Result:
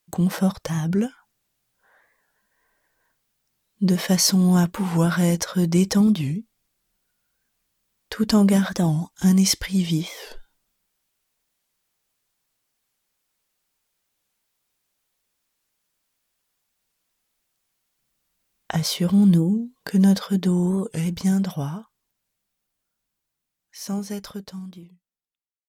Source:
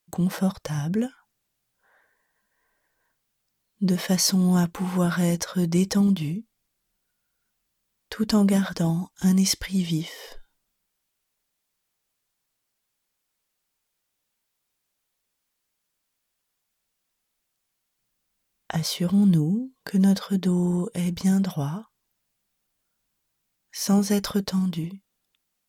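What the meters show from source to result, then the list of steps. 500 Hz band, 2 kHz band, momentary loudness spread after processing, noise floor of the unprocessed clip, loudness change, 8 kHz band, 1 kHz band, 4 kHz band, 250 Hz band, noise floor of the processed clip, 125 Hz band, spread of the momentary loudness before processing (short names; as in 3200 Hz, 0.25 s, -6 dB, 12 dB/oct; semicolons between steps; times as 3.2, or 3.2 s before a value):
+2.0 dB, +2.5 dB, 15 LU, -79 dBFS, +2.5 dB, +2.5 dB, +2.0 dB, +2.5 dB, +2.5 dB, -81 dBFS, +2.5 dB, 11 LU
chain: ending faded out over 5.72 s; record warp 45 rpm, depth 160 cents; gain +3 dB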